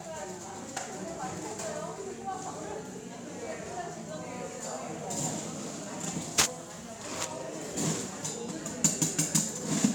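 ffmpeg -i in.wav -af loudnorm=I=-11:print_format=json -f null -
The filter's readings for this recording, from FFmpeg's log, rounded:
"input_i" : "-32.2",
"input_tp" : "-7.5",
"input_lra" : "8.6",
"input_thresh" : "-42.3",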